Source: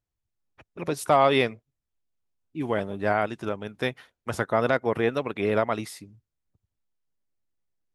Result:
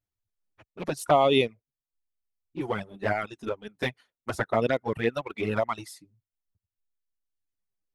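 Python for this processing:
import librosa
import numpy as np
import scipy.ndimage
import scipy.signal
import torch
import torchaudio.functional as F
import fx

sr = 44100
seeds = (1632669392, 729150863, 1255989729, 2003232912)

p1 = fx.dereverb_blind(x, sr, rt60_s=1.4)
p2 = np.sign(p1) * np.maximum(np.abs(p1) - 10.0 ** (-36.0 / 20.0), 0.0)
p3 = p1 + (p2 * librosa.db_to_amplitude(-8.5))
y = fx.env_flanger(p3, sr, rest_ms=10.2, full_db=-16.5)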